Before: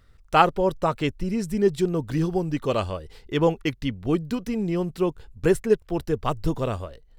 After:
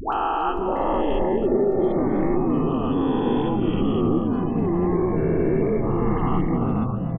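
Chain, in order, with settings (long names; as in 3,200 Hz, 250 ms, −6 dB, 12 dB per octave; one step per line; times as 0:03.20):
peak hold with a rise ahead of every peak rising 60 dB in 2.89 s
low-pass filter 2,900 Hz 12 dB per octave
gate on every frequency bin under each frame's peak −30 dB strong
dynamic equaliser 1,200 Hz, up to −5 dB, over −28 dBFS, Q 1.2
downward compressor, threshold −20 dBFS, peak gain reduction 8.5 dB
0:04.39–0:06.74: transient designer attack −9 dB, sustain +5 dB
phaser with its sweep stopped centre 570 Hz, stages 6
all-pass dispersion highs, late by 131 ms, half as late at 750 Hz
delay with pitch and tempo change per echo 574 ms, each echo −7 semitones, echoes 3
single-tap delay 272 ms −11.5 dB
level +2.5 dB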